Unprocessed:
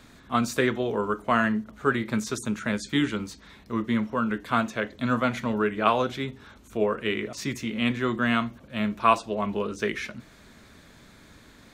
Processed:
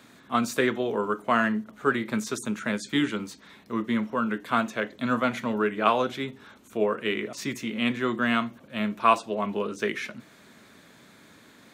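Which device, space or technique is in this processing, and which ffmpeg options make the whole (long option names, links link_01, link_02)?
exciter from parts: -filter_complex "[0:a]highpass=160,asplit=2[link_01][link_02];[link_02]highpass=frequency=4900:poles=1,asoftclip=type=tanh:threshold=-34dB,highpass=frequency=3800:width=0.5412,highpass=frequency=3800:width=1.3066,volume=-11dB[link_03];[link_01][link_03]amix=inputs=2:normalize=0"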